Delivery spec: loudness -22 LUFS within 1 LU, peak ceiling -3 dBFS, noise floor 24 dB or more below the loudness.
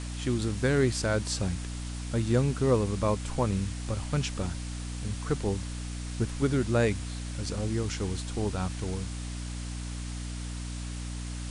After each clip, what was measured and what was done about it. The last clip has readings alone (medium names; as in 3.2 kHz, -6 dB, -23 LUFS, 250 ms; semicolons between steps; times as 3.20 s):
hum 60 Hz; highest harmonic 300 Hz; hum level -33 dBFS; noise floor -36 dBFS; noise floor target -55 dBFS; loudness -31.0 LUFS; peak level -12.0 dBFS; loudness target -22.0 LUFS
-> de-hum 60 Hz, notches 5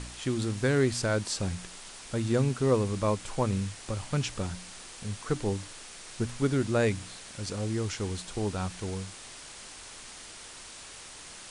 hum not found; noise floor -46 dBFS; noise floor target -55 dBFS
-> noise reduction 9 dB, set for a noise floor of -46 dBFS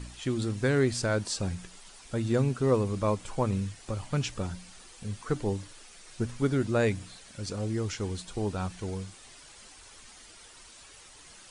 noise floor -52 dBFS; noise floor target -55 dBFS
-> noise reduction 6 dB, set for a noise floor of -52 dBFS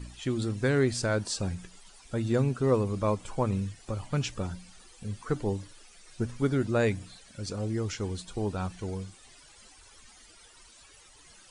noise floor -55 dBFS; loudness -30.5 LUFS; peak level -13.5 dBFS; loudness target -22.0 LUFS
-> trim +8.5 dB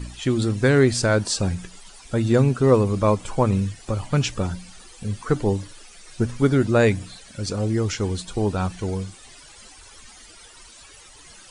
loudness -22.0 LUFS; peak level -5.0 dBFS; noise floor -47 dBFS